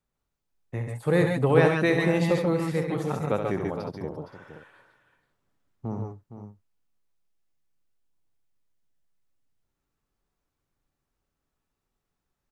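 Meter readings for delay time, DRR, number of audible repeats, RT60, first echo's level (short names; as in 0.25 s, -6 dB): 69 ms, none, 4, none, -7.5 dB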